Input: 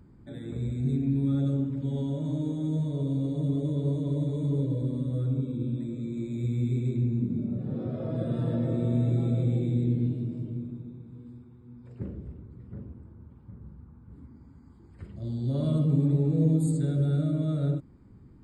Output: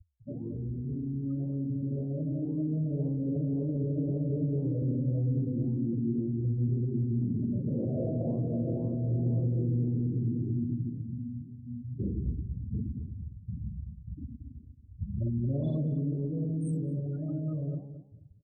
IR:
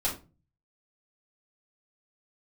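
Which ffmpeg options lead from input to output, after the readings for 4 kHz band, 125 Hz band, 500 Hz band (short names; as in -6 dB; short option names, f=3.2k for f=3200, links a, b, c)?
n/a, -3.0 dB, -2.5 dB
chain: -filter_complex "[0:a]afftfilt=real='re*gte(hypot(re,im),0.0251)':imag='im*gte(hypot(re,im),0.0251)':win_size=1024:overlap=0.75,acompressor=threshold=-28dB:ratio=4,alimiter=level_in=9dB:limit=-24dB:level=0:latency=1:release=78,volume=-9dB,dynaudnorm=f=470:g=11:m=5dB,flanger=delay=9.5:depth=8.8:regen=83:speed=1.9:shape=sinusoidal,asplit=2[a][b];[b]adelay=224,lowpass=f=1.2k:p=1,volume=-10.5dB,asplit=2[c][d];[d]adelay=224,lowpass=f=1.2k:p=1,volume=0.19,asplit=2[e][f];[f]adelay=224,lowpass=f=1.2k:p=1,volume=0.19[g];[c][e][g]amix=inputs=3:normalize=0[h];[a][h]amix=inputs=2:normalize=0,volume=8.5dB"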